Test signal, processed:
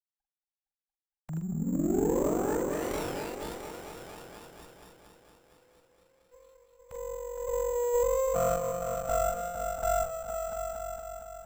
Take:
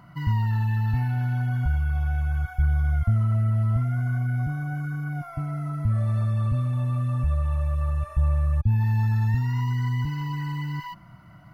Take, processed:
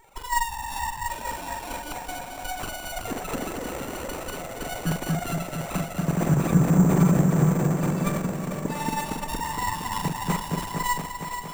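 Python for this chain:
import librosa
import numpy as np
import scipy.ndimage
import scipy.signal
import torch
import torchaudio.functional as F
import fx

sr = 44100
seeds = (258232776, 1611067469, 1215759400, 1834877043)

p1 = fx.sine_speech(x, sr)
p2 = fx.dynamic_eq(p1, sr, hz=650.0, q=1.2, threshold_db=-27.0, ratio=4.0, max_db=-5)
p3 = fx.env_phaser(p2, sr, low_hz=330.0, high_hz=2800.0, full_db=-22.0)
p4 = fx.doubler(p3, sr, ms=44.0, db=-5)
p5 = p4 + fx.echo_opening(p4, sr, ms=231, hz=400, octaves=1, feedback_pct=70, wet_db=0, dry=0)
p6 = fx.rev_schroeder(p5, sr, rt60_s=3.8, comb_ms=30, drr_db=14.5)
p7 = np.repeat(p6[::6], 6)[:len(p6)]
p8 = fx.running_max(p7, sr, window=17)
y = F.gain(torch.from_numpy(p8), -2.5).numpy()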